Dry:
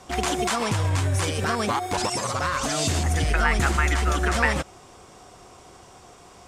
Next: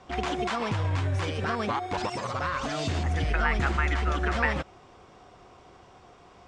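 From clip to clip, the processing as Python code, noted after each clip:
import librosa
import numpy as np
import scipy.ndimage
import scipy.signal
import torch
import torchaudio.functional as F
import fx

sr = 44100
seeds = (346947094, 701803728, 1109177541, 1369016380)

y = scipy.signal.sosfilt(scipy.signal.butter(2, 3700.0, 'lowpass', fs=sr, output='sos'), x)
y = y * librosa.db_to_amplitude(-4.0)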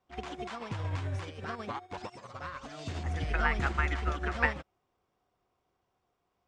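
y = fx.dmg_crackle(x, sr, seeds[0], per_s=82.0, level_db=-52.0)
y = fx.upward_expand(y, sr, threshold_db=-39.0, expansion=2.5)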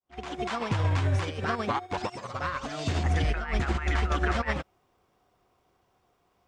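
y = fx.fade_in_head(x, sr, length_s=0.54)
y = fx.over_compress(y, sr, threshold_db=-32.0, ratio=-0.5)
y = y * librosa.db_to_amplitude(7.5)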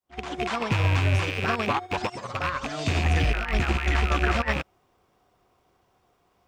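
y = fx.rattle_buzz(x, sr, strikes_db=-37.0, level_db=-21.0)
y = y * librosa.db_to_amplitude(3.0)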